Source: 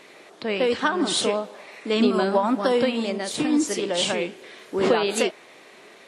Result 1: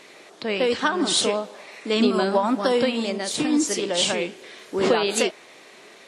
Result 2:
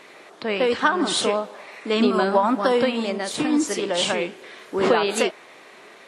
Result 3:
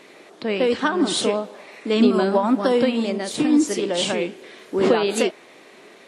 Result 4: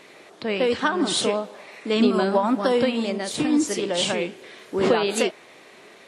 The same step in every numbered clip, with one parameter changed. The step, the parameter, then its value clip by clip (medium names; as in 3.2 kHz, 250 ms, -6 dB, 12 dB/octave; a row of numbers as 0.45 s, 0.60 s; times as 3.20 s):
peaking EQ, frequency: 6.1 kHz, 1.2 kHz, 270 Hz, 99 Hz